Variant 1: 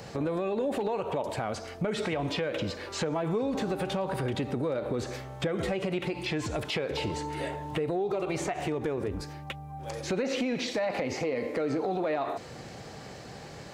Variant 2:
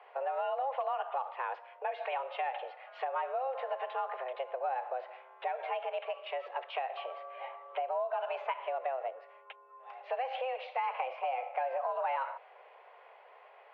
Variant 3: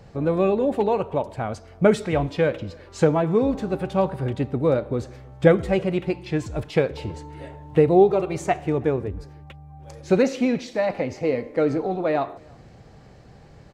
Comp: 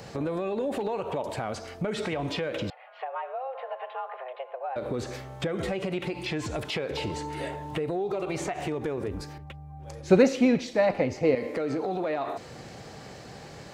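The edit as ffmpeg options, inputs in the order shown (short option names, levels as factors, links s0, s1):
-filter_complex "[0:a]asplit=3[s0][s1][s2];[s0]atrim=end=2.702[s3];[1:a]atrim=start=2.698:end=4.762[s4];[s1]atrim=start=4.758:end=9.382[s5];[2:a]atrim=start=9.378:end=11.352[s6];[s2]atrim=start=11.348[s7];[s3][s4]acrossfade=d=0.004:c1=hsin:c2=hsin[s8];[s8][s5]acrossfade=d=0.004:c1=hsin:c2=hsin[s9];[s9][s6]acrossfade=d=0.004:c1=hsin:c2=hsin[s10];[s10][s7]acrossfade=d=0.004:c1=hsin:c2=hsin"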